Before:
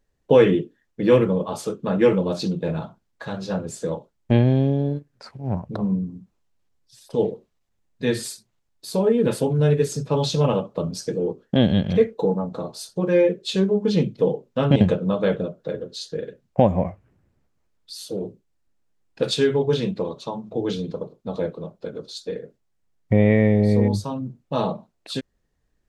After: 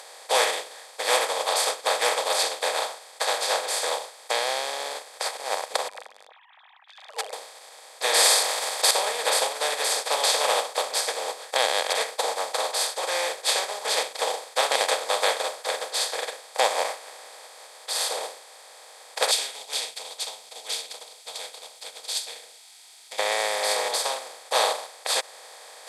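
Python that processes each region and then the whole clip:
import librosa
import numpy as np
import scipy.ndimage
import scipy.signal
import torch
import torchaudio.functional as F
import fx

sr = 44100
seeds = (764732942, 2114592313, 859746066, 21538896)

y = fx.chain(x, sr, fx.sine_speech(),
    fx.clip_hard(threshold_db=-12.5),
    fx.highpass(hz=840.0, slope=12), at=(5.88, 7.33))
y = fx.chain(y, sr, fx.notch(hz=1500.0, q=14.0),
    fx.env_flatten(amount_pct=70), at=(8.04, 8.91))
y = fx.chain(y, sr, fx.cheby2_bandstop(low_hz=350.0, high_hz=1800.0, order=4, stop_db=40),
    fx.comb(ms=1.8, depth=0.33), at=(19.31, 23.19))
y = fx.bin_compress(y, sr, power=0.2)
y = scipy.signal.sosfilt(scipy.signal.butter(4, 760.0, 'highpass', fs=sr, output='sos'), y)
y = fx.upward_expand(y, sr, threshold_db=-29.0, expansion=2.5)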